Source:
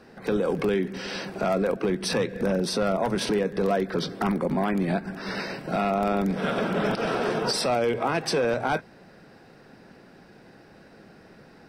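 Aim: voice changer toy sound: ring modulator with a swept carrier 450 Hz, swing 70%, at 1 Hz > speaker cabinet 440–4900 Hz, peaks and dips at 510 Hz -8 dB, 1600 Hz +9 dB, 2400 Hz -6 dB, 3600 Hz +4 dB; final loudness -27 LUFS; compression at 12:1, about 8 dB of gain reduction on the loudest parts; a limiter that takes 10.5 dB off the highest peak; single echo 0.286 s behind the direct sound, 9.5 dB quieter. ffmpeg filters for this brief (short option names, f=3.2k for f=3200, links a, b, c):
-af "acompressor=threshold=-28dB:ratio=12,alimiter=level_in=3.5dB:limit=-24dB:level=0:latency=1,volume=-3.5dB,aecho=1:1:286:0.335,aeval=exprs='val(0)*sin(2*PI*450*n/s+450*0.7/1*sin(2*PI*1*n/s))':c=same,highpass=440,equalizer=f=510:t=q:w=4:g=-8,equalizer=f=1.6k:t=q:w=4:g=9,equalizer=f=2.4k:t=q:w=4:g=-6,equalizer=f=3.6k:t=q:w=4:g=4,lowpass=f=4.9k:w=0.5412,lowpass=f=4.9k:w=1.3066,volume=13dB"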